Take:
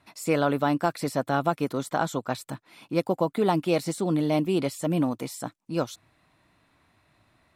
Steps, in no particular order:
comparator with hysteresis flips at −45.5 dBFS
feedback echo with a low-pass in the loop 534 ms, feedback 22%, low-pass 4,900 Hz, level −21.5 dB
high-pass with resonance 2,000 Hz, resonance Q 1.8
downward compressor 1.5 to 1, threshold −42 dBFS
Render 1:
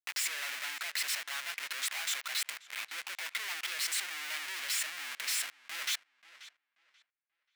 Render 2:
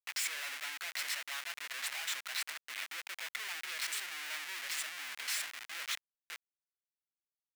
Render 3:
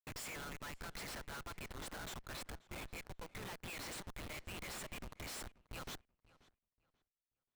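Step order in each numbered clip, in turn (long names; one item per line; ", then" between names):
comparator with hysteresis, then feedback echo with a low-pass in the loop, then downward compressor, then high-pass with resonance
feedback echo with a low-pass in the loop, then downward compressor, then comparator with hysteresis, then high-pass with resonance
downward compressor, then high-pass with resonance, then comparator with hysteresis, then feedback echo with a low-pass in the loop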